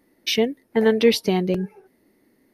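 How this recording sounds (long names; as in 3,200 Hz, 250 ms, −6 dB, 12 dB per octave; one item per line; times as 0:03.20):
background noise floor −64 dBFS
spectral slope −4.0 dB per octave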